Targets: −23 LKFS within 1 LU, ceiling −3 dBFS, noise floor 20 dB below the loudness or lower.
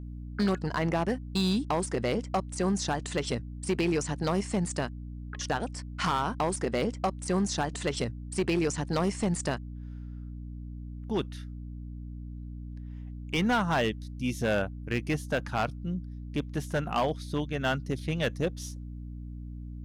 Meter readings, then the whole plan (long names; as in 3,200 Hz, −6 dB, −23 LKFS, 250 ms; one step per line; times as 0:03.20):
share of clipped samples 1.2%; peaks flattened at −21.0 dBFS; mains hum 60 Hz; hum harmonics up to 300 Hz; level of the hum −37 dBFS; integrated loudness −30.5 LKFS; sample peak −21.0 dBFS; target loudness −23.0 LKFS
→ clipped peaks rebuilt −21 dBFS
hum removal 60 Hz, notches 5
level +7.5 dB